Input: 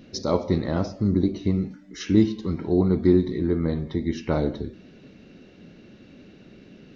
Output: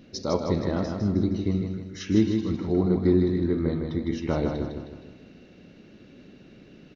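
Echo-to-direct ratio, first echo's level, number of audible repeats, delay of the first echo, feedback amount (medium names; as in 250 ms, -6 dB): -4.0 dB, -5.0 dB, 5, 156 ms, 46%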